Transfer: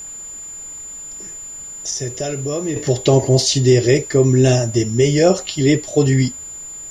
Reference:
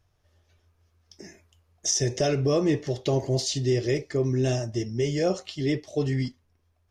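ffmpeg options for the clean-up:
ffmpeg -i in.wav -af "bandreject=frequency=7100:width=30,agate=range=-21dB:threshold=-25dB,asetnsamples=nb_out_samples=441:pad=0,asendcmd='2.76 volume volume -11.5dB',volume=0dB" out.wav

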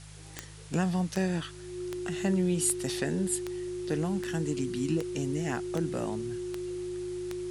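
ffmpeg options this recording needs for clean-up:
ffmpeg -i in.wav -af "adeclick=threshold=4,bandreject=frequency=51.7:width_type=h:width=4,bandreject=frequency=103.4:width_type=h:width=4,bandreject=frequency=155.1:width_type=h:width=4,bandreject=frequency=360:width=30,afwtdn=0.0028" out.wav

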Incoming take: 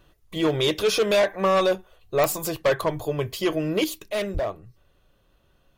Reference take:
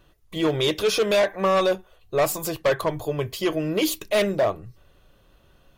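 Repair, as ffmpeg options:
ffmpeg -i in.wav -filter_complex "[0:a]adeclick=threshold=4,asplit=3[link_01][link_02][link_03];[link_01]afade=type=out:start_time=4.33:duration=0.02[link_04];[link_02]highpass=frequency=140:width=0.5412,highpass=frequency=140:width=1.3066,afade=type=in:start_time=4.33:duration=0.02,afade=type=out:start_time=4.45:duration=0.02[link_05];[link_03]afade=type=in:start_time=4.45:duration=0.02[link_06];[link_04][link_05][link_06]amix=inputs=3:normalize=0,asetnsamples=nb_out_samples=441:pad=0,asendcmd='3.84 volume volume 6dB',volume=0dB" out.wav

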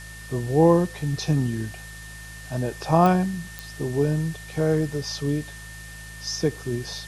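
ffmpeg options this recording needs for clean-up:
ffmpeg -i in.wav -af "adeclick=threshold=4,bandreject=frequency=53.4:width_type=h:width=4,bandreject=frequency=106.8:width_type=h:width=4,bandreject=frequency=160.2:width_type=h:width=4,bandreject=frequency=1800:width=30,afwtdn=0.0063" out.wav

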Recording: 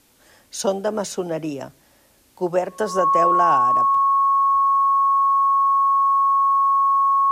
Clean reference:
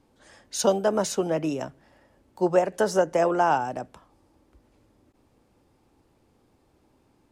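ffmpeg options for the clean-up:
ffmpeg -i in.wav -af "bandreject=frequency=1100:width=30,agate=range=-21dB:threshold=-48dB" out.wav

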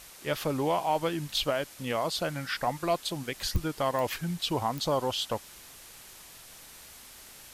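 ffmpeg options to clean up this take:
ffmpeg -i in.wav -af "adeclick=threshold=4,afwtdn=0.004" out.wav

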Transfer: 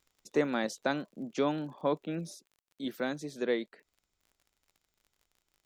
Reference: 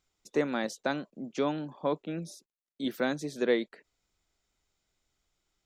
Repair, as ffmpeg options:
ffmpeg -i in.wav -af "adeclick=threshold=4,asetnsamples=nb_out_samples=441:pad=0,asendcmd='2.55 volume volume 4dB',volume=0dB" out.wav

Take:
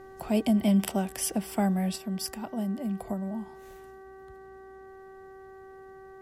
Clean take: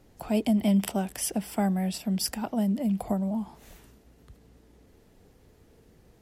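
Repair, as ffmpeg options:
ffmpeg -i in.wav -af "bandreject=frequency=383.9:width_type=h:width=4,bandreject=frequency=767.8:width_type=h:width=4,bandreject=frequency=1151.7:width_type=h:width=4,bandreject=frequency=1535.6:width_type=h:width=4,bandreject=frequency=1919.5:width_type=h:width=4,asetnsamples=nb_out_samples=441:pad=0,asendcmd='1.96 volume volume 5dB',volume=0dB" out.wav

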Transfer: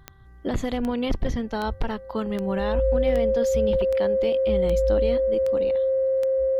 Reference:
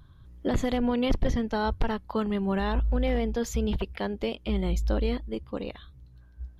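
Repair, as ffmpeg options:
ffmpeg -i in.wav -af "adeclick=threshold=4,bandreject=frequency=389.1:width_type=h:width=4,bandreject=frequency=778.2:width_type=h:width=4,bandreject=frequency=1167.3:width_type=h:width=4,bandreject=frequency=1556.4:width_type=h:width=4,bandreject=frequency=1945.5:width_type=h:width=4,bandreject=frequency=530:width=30,asetnsamples=nb_out_samples=441:pad=0,asendcmd='5.78 volume volume 5.5dB',volume=0dB" out.wav

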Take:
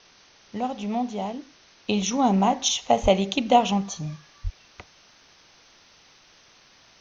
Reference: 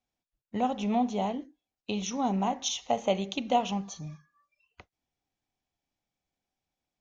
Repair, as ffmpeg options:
ffmpeg -i in.wav -filter_complex "[0:a]asplit=3[link_01][link_02][link_03];[link_01]afade=type=out:start_time=3.02:duration=0.02[link_04];[link_02]highpass=frequency=140:width=0.5412,highpass=frequency=140:width=1.3066,afade=type=in:start_time=3.02:duration=0.02,afade=type=out:start_time=3.14:duration=0.02[link_05];[link_03]afade=type=in:start_time=3.14:duration=0.02[link_06];[link_04][link_05][link_06]amix=inputs=3:normalize=0,asplit=3[link_07][link_08][link_09];[link_07]afade=type=out:start_time=4.43:duration=0.02[link_10];[link_08]highpass=frequency=140:width=0.5412,highpass=frequency=140:width=1.3066,afade=type=in:start_time=4.43:duration=0.02,afade=type=out:start_time=4.55:duration=0.02[link_11];[link_09]afade=type=in:start_time=4.55:duration=0.02[link_12];[link_10][link_11][link_12]amix=inputs=3:normalize=0,afwtdn=0.0032,asetnsamples=nb_out_samples=441:pad=0,asendcmd='1.84 volume volume -8dB',volume=0dB" out.wav

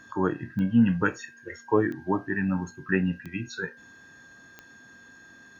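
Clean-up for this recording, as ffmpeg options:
ffmpeg -i in.wav -af "adeclick=threshold=4,bandreject=frequency=1600:width=30" out.wav

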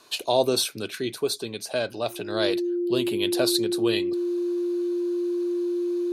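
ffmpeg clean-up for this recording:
ffmpeg -i in.wav -af "bandreject=frequency=350:width=30" out.wav

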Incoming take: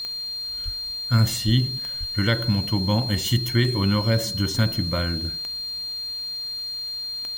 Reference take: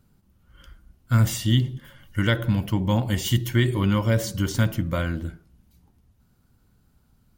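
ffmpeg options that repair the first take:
ffmpeg -i in.wav -filter_complex "[0:a]adeclick=threshold=4,bandreject=frequency=4200:width=30,asplit=3[link_01][link_02][link_03];[link_01]afade=type=out:start_time=0.64:duration=0.02[link_04];[link_02]highpass=frequency=140:width=0.5412,highpass=frequency=140:width=1.3066,afade=type=in:start_time=0.64:duration=0.02,afade=type=out:start_time=0.76:duration=0.02[link_05];[link_03]afade=type=in:start_time=0.76:duration=0.02[link_06];[link_04][link_05][link_06]amix=inputs=3:normalize=0,asplit=3[link_07][link_08][link_09];[link_07]afade=type=out:start_time=1.45:duration=0.02[link_10];[link_08]highpass=frequency=140:width=0.5412,highpass=frequency=140:width=1.3066,afade=type=in:start_time=1.45:duration=0.02,afade=type=out:start_time=1.57:duration=0.02[link_11];[link_09]afade=type=in:start_time=1.57:duration=0.02[link_12];[link_10][link_11][link_12]amix=inputs=3:normalize=0,asplit=3[link_13][link_14][link_15];[link_13]afade=type=out:start_time=1.99:duration=0.02[link_16];[link_14]highpass=frequency=140:width=0.5412,highpass=frequency=140:width=1.3066,afade=type=in:start_time=1.99:duration=0.02,afade=type=out:start_time=2.11:duration=0.02[link_17];[link_15]afade=type=in:start_time=2.11:duration=0.02[link_18];[link_16][link_17][link_18]amix=inputs=3:normalize=0,agate=range=-21dB:threshold=-23dB" out.wav

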